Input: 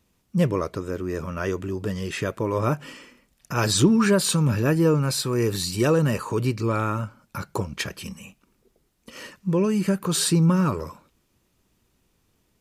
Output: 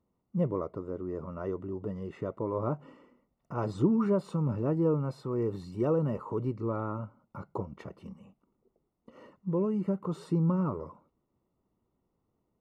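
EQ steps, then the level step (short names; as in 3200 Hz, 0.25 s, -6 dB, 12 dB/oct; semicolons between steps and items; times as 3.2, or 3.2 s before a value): polynomial smoothing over 65 samples; low shelf 79 Hz -10 dB; -6.5 dB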